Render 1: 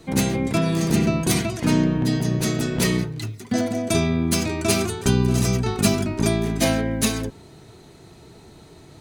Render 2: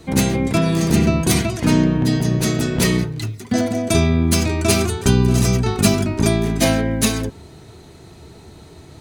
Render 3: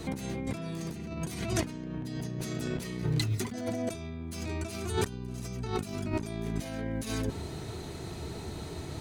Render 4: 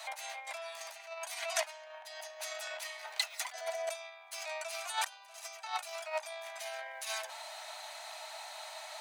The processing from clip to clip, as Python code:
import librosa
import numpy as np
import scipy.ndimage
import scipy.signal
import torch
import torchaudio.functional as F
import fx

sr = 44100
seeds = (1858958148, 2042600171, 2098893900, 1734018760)

y1 = fx.peak_eq(x, sr, hz=76.0, db=9.0, octaves=0.42)
y1 = y1 * librosa.db_to_amplitude(3.5)
y2 = fx.over_compress(y1, sr, threshold_db=-28.0, ratio=-1.0)
y2 = y2 * librosa.db_to_amplitude(-7.0)
y3 = scipy.signal.sosfilt(scipy.signal.cheby1(6, 3, 600.0, 'highpass', fs=sr, output='sos'), y2)
y3 = y3 * librosa.db_to_amplitude(3.5)